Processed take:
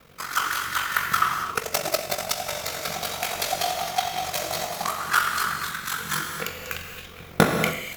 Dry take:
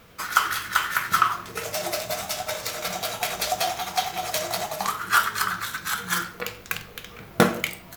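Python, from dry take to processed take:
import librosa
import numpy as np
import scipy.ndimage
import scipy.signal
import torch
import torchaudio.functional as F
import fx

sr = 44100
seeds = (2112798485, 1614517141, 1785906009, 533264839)

y = x * np.sin(2.0 * np.pi * 23.0 * np.arange(len(x)) / sr)
y = fx.rev_gated(y, sr, seeds[0], gate_ms=300, shape='flat', drr_db=2.5)
y = fx.transient(y, sr, attack_db=9, sustain_db=-8, at=(1.45, 2.37))
y = y * 10.0 ** (1.0 / 20.0)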